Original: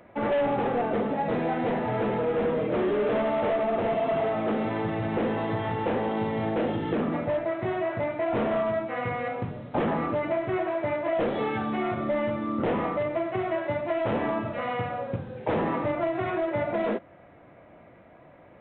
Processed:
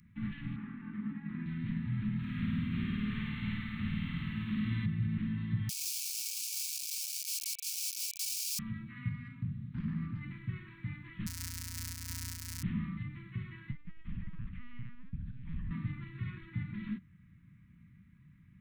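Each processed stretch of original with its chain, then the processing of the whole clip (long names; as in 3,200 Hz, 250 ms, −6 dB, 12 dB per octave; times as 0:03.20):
0:00.56–0:01.46: three-way crossover with the lows and the highs turned down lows −22 dB, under 230 Hz, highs −21 dB, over 2,100 Hz + envelope flattener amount 100%
0:02.19–0:04.86: high-shelf EQ 2,300 Hz +9.5 dB + flutter between parallel walls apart 9 metres, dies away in 1.3 s
0:05.69–0:08.59: wrap-around overflow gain 27 dB + linear-phase brick-wall high-pass 2,200 Hz
0:09.09–0:10.21: high-shelf EQ 2,400 Hz −6 dB + saturating transformer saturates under 630 Hz
0:11.26–0:12.63: samples sorted by size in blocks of 256 samples + notch filter 350 Hz, Q 11 + ring modulation 790 Hz
0:13.71–0:15.71: downward compressor 3 to 1, threshold −34 dBFS + linear-prediction vocoder at 8 kHz pitch kept
whole clip: elliptic band-stop filter 190–1,800 Hz, stop band 70 dB; flat-topped bell 2,300 Hz −14 dB; level +1.5 dB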